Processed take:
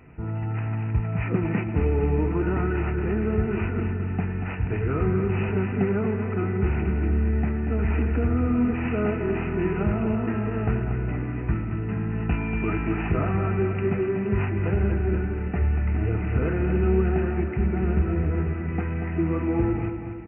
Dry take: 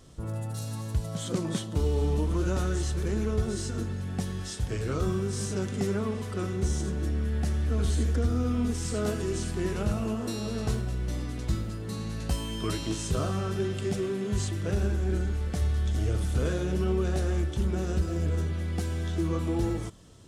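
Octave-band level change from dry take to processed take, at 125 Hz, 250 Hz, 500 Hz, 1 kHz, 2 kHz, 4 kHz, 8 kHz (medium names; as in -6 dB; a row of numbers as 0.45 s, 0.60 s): +4.5 dB, +6.0 dB, +5.0 dB, +6.0 dB, +7.5 dB, under -10 dB, under -40 dB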